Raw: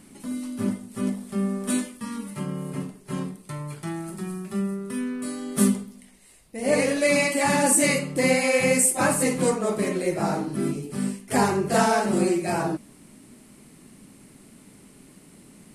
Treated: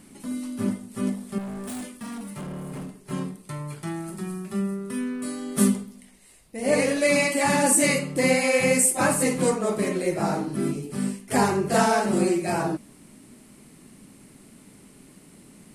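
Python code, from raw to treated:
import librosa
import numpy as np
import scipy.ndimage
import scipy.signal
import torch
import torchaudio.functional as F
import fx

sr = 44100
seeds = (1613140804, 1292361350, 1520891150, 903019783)

y = fx.clip_hard(x, sr, threshold_db=-32.0, at=(1.38, 3.11))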